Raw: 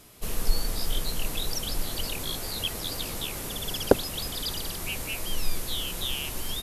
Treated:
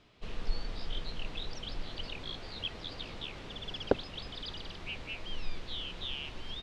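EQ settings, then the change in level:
transistor ladder low-pass 4,500 Hz, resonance 25%
−2.5 dB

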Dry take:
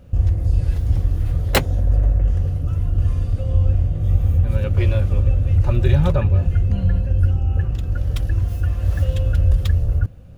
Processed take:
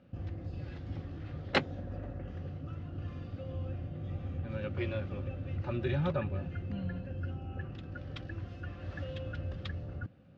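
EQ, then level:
loudspeaker in its box 220–4,900 Hz, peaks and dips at 450 Hz −8 dB, 660 Hz −5 dB, 980 Hz −6 dB
high-shelf EQ 3,300 Hz −9.5 dB
−5.5 dB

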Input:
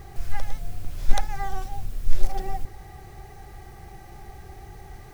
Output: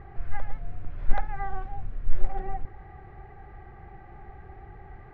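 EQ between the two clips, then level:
transistor ladder low-pass 2,300 Hz, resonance 25%
+3.0 dB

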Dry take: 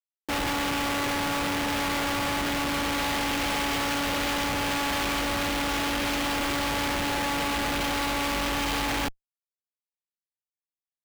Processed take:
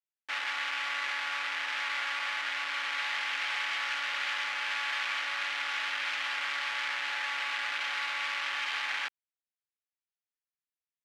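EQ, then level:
four-pole ladder band-pass 2,200 Hz, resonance 25%
+9.0 dB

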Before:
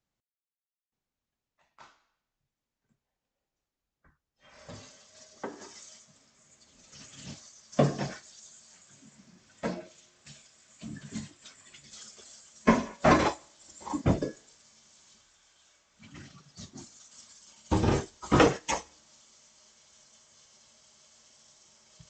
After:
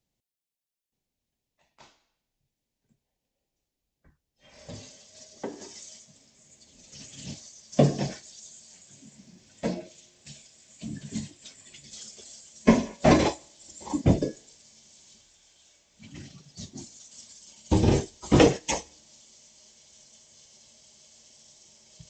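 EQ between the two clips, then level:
parametric band 1,300 Hz −13 dB 0.96 octaves
+5.0 dB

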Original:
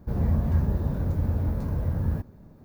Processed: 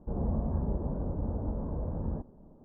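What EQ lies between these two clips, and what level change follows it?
low-pass filter 1,000 Hz 24 dB per octave
high-frequency loss of the air 170 metres
parametric band 100 Hz −12 dB 1.5 octaves
0.0 dB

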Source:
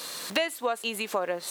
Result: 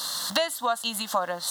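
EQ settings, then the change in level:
parametric band 3,400 Hz +8.5 dB 1.2 octaves
phaser with its sweep stopped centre 1,000 Hz, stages 4
+5.5 dB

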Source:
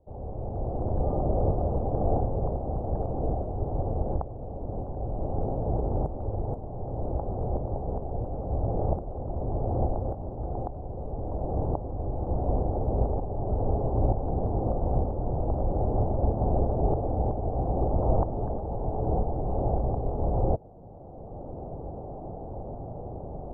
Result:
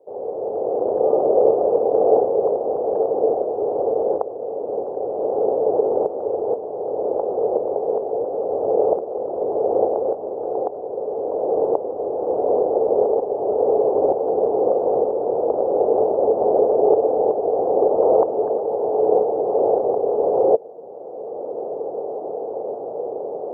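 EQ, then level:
high-pass with resonance 450 Hz, resonance Q 4.9
+5.5 dB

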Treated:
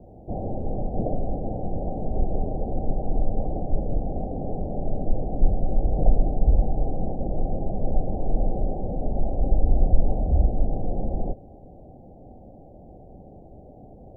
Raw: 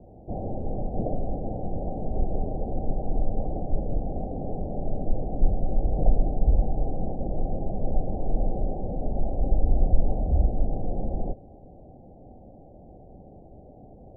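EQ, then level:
no EQ move
+2.0 dB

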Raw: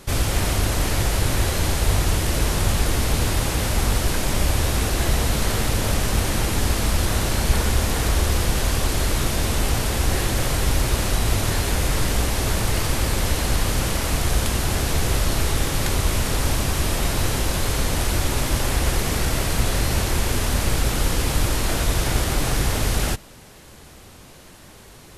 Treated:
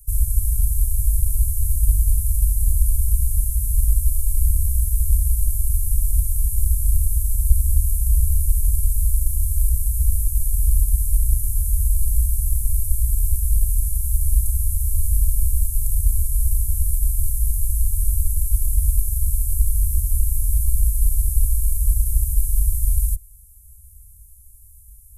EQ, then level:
inverse Chebyshev band-stop filter 220–3,600 Hz, stop band 60 dB
+6.0 dB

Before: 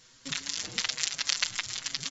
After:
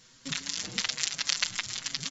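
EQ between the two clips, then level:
parametric band 190 Hz +6 dB 0.82 octaves
0.0 dB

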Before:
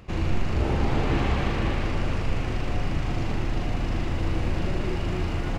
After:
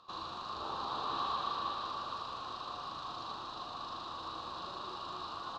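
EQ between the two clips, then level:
pair of resonant band-passes 2,100 Hz, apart 1.8 octaves
+5.0 dB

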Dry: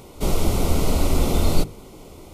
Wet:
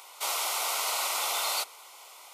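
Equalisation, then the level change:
high-pass filter 880 Hz 24 dB per octave
+2.5 dB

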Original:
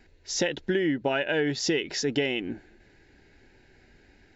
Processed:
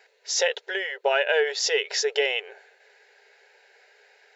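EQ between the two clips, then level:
linear-phase brick-wall high-pass 400 Hz
+5.0 dB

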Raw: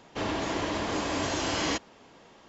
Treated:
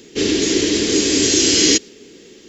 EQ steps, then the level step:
dynamic equaliser 5,300 Hz, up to +5 dB, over −45 dBFS, Q 0.73
drawn EQ curve 130 Hz 0 dB, 420 Hz +13 dB, 620 Hz −11 dB, 1,000 Hz −16 dB, 1,900 Hz +2 dB, 8,400 Hz +14 dB
+6.0 dB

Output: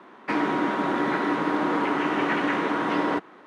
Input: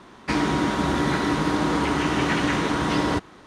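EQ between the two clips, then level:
high-pass filter 81 Hz
three-way crossover with the lows and the highs turned down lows −24 dB, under 210 Hz, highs −22 dB, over 2,600 Hz
high-shelf EQ 4,900 Hz +8 dB
0.0 dB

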